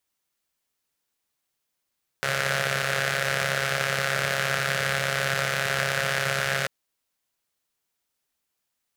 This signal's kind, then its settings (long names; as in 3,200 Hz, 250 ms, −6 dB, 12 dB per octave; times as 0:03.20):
pulse-train model of a four-cylinder engine, steady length 4.44 s, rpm 4,100, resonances 150/570/1,500 Hz